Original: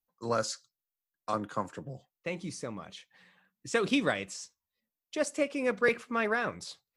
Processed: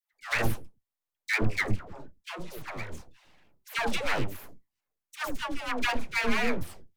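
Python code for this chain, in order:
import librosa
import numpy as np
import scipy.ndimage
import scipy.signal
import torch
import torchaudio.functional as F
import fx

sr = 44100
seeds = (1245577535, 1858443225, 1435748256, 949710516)

y = fx.band_shelf(x, sr, hz=960.0, db=13.0, octaves=1.0)
y = np.abs(y)
y = fx.dispersion(y, sr, late='lows', ms=137.0, hz=620.0)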